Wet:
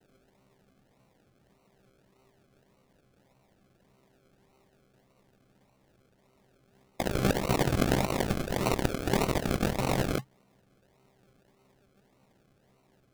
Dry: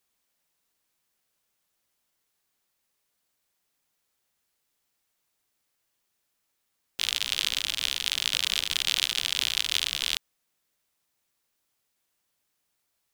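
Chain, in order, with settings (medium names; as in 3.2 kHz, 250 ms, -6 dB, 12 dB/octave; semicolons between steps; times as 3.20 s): vocoder on a held chord bare fifth, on C3; compressor with a negative ratio -33 dBFS, ratio -0.5; decimation with a swept rate 37×, swing 60% 1.7 Hz; trim +5.5 dB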